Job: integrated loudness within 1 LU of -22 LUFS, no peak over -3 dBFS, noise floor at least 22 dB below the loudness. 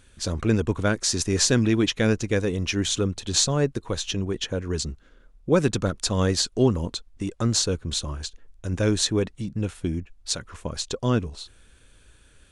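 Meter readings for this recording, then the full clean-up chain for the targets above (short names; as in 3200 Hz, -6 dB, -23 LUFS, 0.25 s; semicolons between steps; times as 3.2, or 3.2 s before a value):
loudness -25.0 LUFS; peak -4.0 dBFS; loudness target -22.0 LUFS
-> gain +3 dB; limiter -3 dBFS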